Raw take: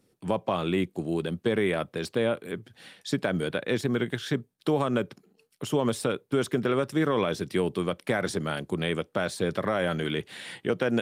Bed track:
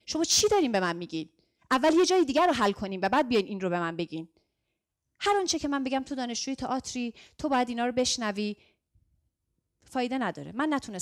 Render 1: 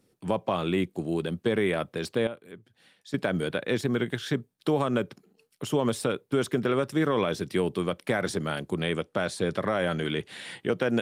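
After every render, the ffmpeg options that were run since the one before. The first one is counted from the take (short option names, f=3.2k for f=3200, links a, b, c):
-filter_complex "[0:a]asettb=1/sr,asplit=3[a][b][c];[a]atrim=end=8.824[d];[b]atrim=start=8.82:end=10.6,asetpts=PTS-STARTPTS,afade=t=in:d=0.004:c=qsin,afade=t=out:st=1.776:d=0.004:c=qsin,lowpass=f=12k:w=0.5412,lowpass=f=12k:w=1.3066[e];[c]atrim=start=10.596[f];[d][e]acrossfade=d=0.004:c1=hsin:c2=qsin[g];[g][f]acrossfade=d=0.004:c1=qsin:c2=hsin,asplit=3[h][i][j];[h]atrim=end=2.272[k];[i]atrim=start=2.268:end=3.142,asetpts=PTS-STARTPTS,volume=-11dB[l];[j]atrim=start=3.138[m];[k][l]acrossfade=d=0.004:c1=hsin:c2=hsin[n];[n][m]acrossfade=d=0.004:c1=hsin:c2=hsin"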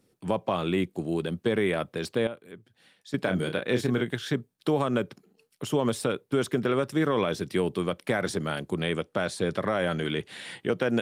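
-filter_complex "[0:a]asettb=1/sr,asplit=3[a][b][c];[a]atrim=end=3.234[d];[b]atrim=start=3.23:end=4.01,asetpts=PTS-STARTPTS,afade=t=in:d=0.004:c=qsin,afade=t=out:st=0.776:d=0.004:c=qsin,asplit=2[e][f];[f]adelay=32,volume=-7dB[g];[e][g]amix=inputs=2:normalize=0,atrim=end_sample=34398[h];[c]atrim=start=4.006[i];[d][h]acrossfade=d=0.004:c1=hsin:c2=qsin[j];[j][i]acrossfade=d=0.004:c1=qsin:c2=hsin"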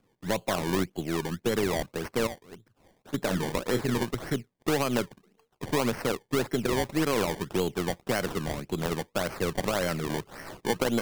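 -af "aeval=exprs='if(lt(val(0),0),0.708*val(0),val(0))':c=same,acrusher=samples=23:mix=1:aa=0.000001:lfo=1:lforange=23:lforate=1.8"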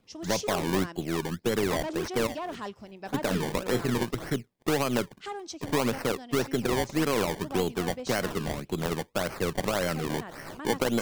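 -filter_complex "[1:a]volume=-12.5dB[a];[0:a][a]amix=inputs=2:normalize=0"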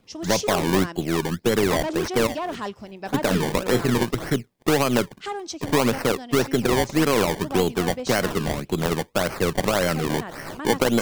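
-af "volume=6.5dB"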